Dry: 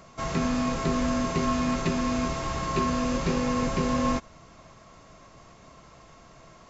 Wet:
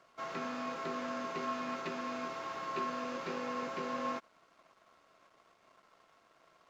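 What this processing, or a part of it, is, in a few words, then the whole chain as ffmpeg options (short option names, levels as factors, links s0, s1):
pocket radio on a weak battery: -af "highpass=360,lowpass=4200,aeval=exprs='sgn(val(0))*max(abs(val(0))-0.00119,0)':c=same,equalizer=f=1400:t=o:w=0.33:g=5,volume=0.376"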